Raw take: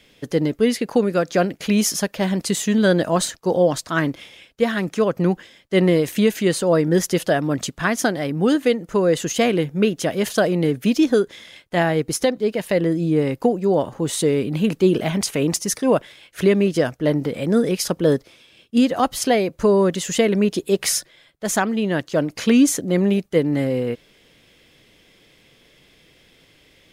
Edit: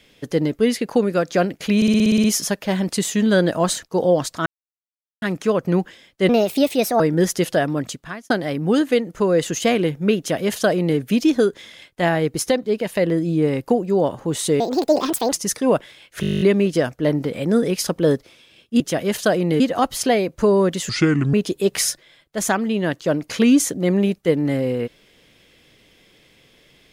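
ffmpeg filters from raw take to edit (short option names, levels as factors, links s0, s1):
-filter_complex "[0:a]asplit=30[s0][s1][s2][s3][s4][s5][s6][s7][s8][s9][s10][s11][s12][s13][s14][s15][s16][s17][s18][s19][s20][s21][s22][s23][s24][s25][s26][s27][s28][s29];[s0]atrim=end=1.822[s30];[s1]atrim=start=1.758:end=1.822[s31];[s2]atrim=start=1.758:end=1.822[s32];[s3]atrim=start=1.758:end=1.822[s33];[s4]atrim=start=1.758:end=1.822[s34];[s5]atrim=start=1.758:end=1.822[s35];[s6]atrim=start=1.758:end=1.822[s36];[s7]atrim=start=1.758:end=1.822[s37];[s8]atrim=start=1.758:end=3.98,asetpts=PTS-STARTPTS,afade=t=out:st=2.218:d=0.004:c=hsin[s38];[s9]atrim=start=3.98:end=4.74,asetpts=PTS-STARTPTS,volume=0[s39];[s10]atrim=start=4.74:end=5.814,asetpts=PTS-STARTPTS,afade=t=in:d=0.004:c=hsin[s40];[s11]atrim=start=5.81:end=6.74,asetpts=PTS-STARTPTS,asetrate=57771,aresample=44100[s41];[s12]atrim=start=6.736:end=8.04,asetpts=PTS-STARTPTS,afade=t=out:st=0.674:d=0.63[s42];[s13]atrim=start=8.04:end=14.344,asetpts=PTS-STARTPTS,afade=t=in:d=0.004:c=hsin[s43];[s14]atrim=start=14.34:end=15.53,asetpts=PTS-STARTPTS,asetrate=72765,aresample=44100,atrim=end_sample=31805,asetpts=PTS-STARTPTS[s44];[s15]atrim=start=15.526:end=16.442[s45];[s16]atrim=start=16.418:end=16.442[s46];[s17]atrim=start=16.418:end=16.442[s47];[s18]atrim=start=16.418:end=16.442[s48];[s19]atrim=start=16.418:end=16.442[s49];[s20]atrim=start=16.418:end=16.442[s50];[s21]atrim=start=16.418:end=16.442[s51];[s22]atrim=start=16.418:end=16.442[s52];[s23]atrim=start=16.418:end=16.442[s53];[s24]atrim=start=16.418:end=16.442[s54];[s25]atrim=start=16.418:end=18.812[s55];[s26]atrim=start=9.918:end=10.722[s56];[s27]atrim=start=18.808:end=20.104[s57];[s28]atrim=start=20.1:end=20.41,asetpts=PTS-STARTPTS,asetrate=30870,aresample=44100[s58];[s29]atrim=start=20.406[s59];[s30][s31]acrossfade=d=0.004:c1=hsin:c2=hsin[s60];[s60][s32]acrossfade=d=0.004:c1=hsin:c2=hsin[s61];[s61][s33]acrossfade=d=0.004:c1=hsin:c2=hsin[s62];[s62][s34]acrossfade=d=0.004:c1=hsin:c2=hsin[s63];[s63][s35]acrossfade=d=0.004:c1=hsin:c2=hsin[s64];[s64][s36]acrossfade=d=0.004:c1=hsin:c2=hsin[s65];[s65][s37]acrossfade=d=0.004:c1=hsin:c2=hsin[s66];[s38][s39][s40]concat=n=3:v=0:a=1[s67];[s66][s67]acrossfade=d=0.004:c1=hsin:c2=hsin[s68];[s68][s41]acrossfade=d=0.004:c1=hsin:c2=hsin[s69];[s42][s43]concat=n=2:v=0:a=1[s70];[s69][s70]acrossfade=d=0.004:c1=hsin:c2=hsin[s71];[s71][s44]acrossfade=d=0.004:c1=hsin:c2=hsin[s72];[s72][s45]acrossfade=d=0.004:c1=hsin:c2=hsin[s73];[s73][s46]acrossfade=d=0.004:c1=hsin:c2=hsin[s74];[s74][s47]acrossfade=d=0.004:c1=hsin:c2=hsin[s75];[s75][s48]acrossfade=d=0.004:c1=hsin:c2=hsin[s76];[s76][s49]acrossfade=d=0.004:c1=hsin:c2=hsin[s77];[s77][s50]acrossfade=d=0.004:c1=hsin:c2=hsin[s78];[s78][s51]acrossfade=d=0.004:c1=hsin:c2=hsin[s79];[s79][s52]acrossfade=d=0.004:c1=hsin:c2=hsin[s80];[s80][s53]acrossfade=d=0.004:c1=hsin:c2=hsin[s81];[s81][s54]acrossfade=d=0.004:c1=hsin:c2=hsin[s82];[s82][s55]acrossfade=d=0.004:c1=hsin:c2=hsin[s83];[s83][s56]acrossfade=d=0.004:c1=hsin:c2=hsin[s84];[s84][s57]acrossfade=d=0.004:c1=hsin:c2=hsin[s85];[s85][s58]acrossfade=d=0.004:c1=hsin:c2=hsin[s86];[s86][s59]acrossfade=d=0.004:c1=hsin:c2=hsin"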